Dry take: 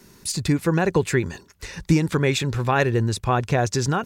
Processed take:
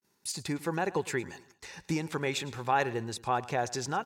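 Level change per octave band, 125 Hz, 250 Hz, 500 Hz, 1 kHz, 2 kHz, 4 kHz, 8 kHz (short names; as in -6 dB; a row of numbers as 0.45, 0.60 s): -16.5, -12.5, -10.0, -5.0, -8.5, -8.5, -8.5 dB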